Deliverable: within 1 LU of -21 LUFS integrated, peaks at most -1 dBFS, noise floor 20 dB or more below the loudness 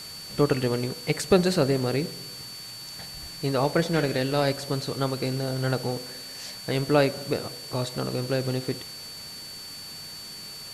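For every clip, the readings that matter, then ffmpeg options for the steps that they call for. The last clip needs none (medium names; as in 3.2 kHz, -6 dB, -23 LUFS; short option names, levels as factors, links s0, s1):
steady tone 4.5 kHz; tone level -39 dBFS; noise floor -40 dBFS; noise floor target -48 dBFS; loudness -27.5 LUFS; peak level -5.5 dBFS; loudness target -21.0 LUFS
-> -af "bandreject=f=4500:w=30"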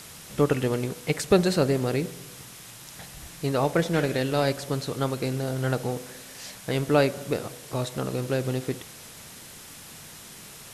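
steady tone not found; noise floor -45 dBFS; noise floor target -47 dBFS
-> -af "afftdn=nr=6:nf=-45"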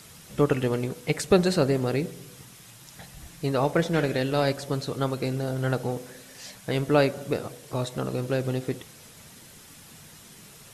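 noise floor -49 dBFS; loudness -26.5 LUFS; peak level -5.5 dBFS; loudness target -21.0 LUFS
-> -af "volume=1.88,alimiter=limit=0.891:level=0:latency=1"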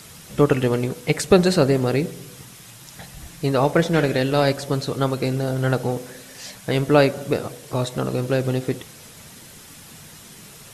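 loudness -21.5 LUFS; peak level -1.0 dBFS; noise floor -44 dBFS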